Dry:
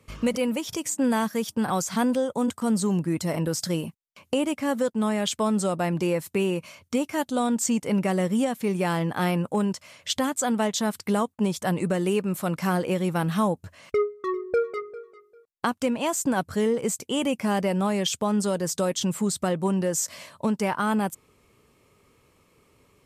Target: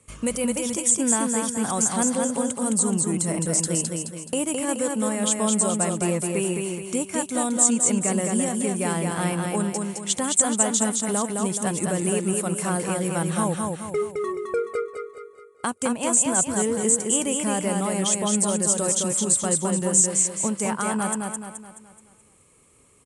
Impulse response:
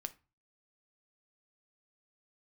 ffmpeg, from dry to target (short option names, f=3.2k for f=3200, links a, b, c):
-af "aecho=1:1:213|426|639|852|1065|1278:0.668|0.294|0.129|0.0569|0.0251|0.011,aexciter=amount=4.9:drive=8.6:freq=7.2k,aresample=22050,aresample=44100,volume=-2dB"